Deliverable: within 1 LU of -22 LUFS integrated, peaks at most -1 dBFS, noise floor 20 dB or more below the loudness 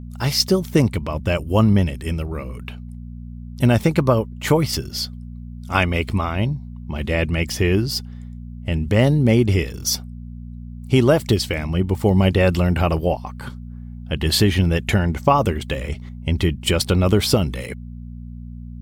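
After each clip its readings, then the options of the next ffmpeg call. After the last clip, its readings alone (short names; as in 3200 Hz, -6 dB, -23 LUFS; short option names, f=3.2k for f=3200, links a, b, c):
hum 60 Hz; harmonics up to 240 Hz; hum level -31 dBFS; loudness -20.0 LUFS; peak -2.0 dBFS; loudness target -22.0 LUFS
-> -af "bandreject=f=60:t=h:w=4,bandreject=f=120:t=h:w=4,bandreject=f=180:t=h:w=4,bandreject=f=240:t=h:w=4"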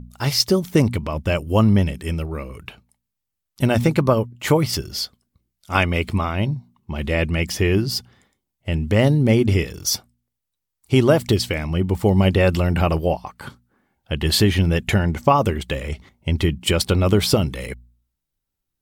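hum none; loudness -20.0 LUFS; peak -1.5 dBFS; loudness target -22.0 LUFS
-> -af "volume=-2dB"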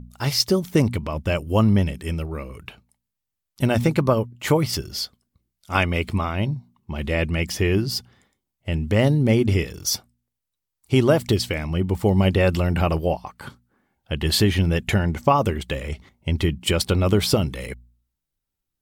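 loudness -22.0 LUFS; peak -3.5 dBFS; noise floor -83 dBFS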